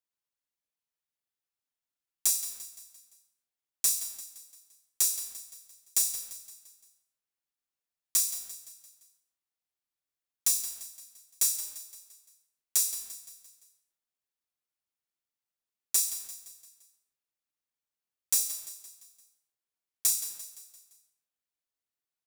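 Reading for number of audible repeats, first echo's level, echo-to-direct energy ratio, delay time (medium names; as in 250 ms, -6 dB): 4, -12.5 dB, -11.5 dB, 172 ms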